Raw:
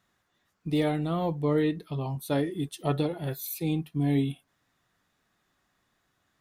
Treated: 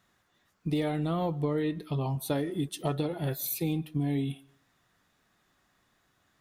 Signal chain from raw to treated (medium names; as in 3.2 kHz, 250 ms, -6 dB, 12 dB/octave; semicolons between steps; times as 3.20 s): compression 6:1, threshold -29 dBFS, peak gain reduction 8 dB; on a send: reverberation RT60 0.45 s, pre-delay 100 ms, DRR 24 dB; on the sum: trim +3 dB